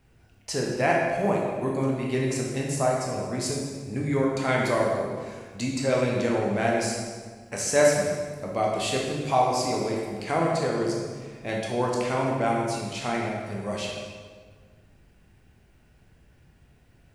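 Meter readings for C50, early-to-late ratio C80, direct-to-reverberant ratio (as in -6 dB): 0.5 dB, 2.5 dB, -2.5 dB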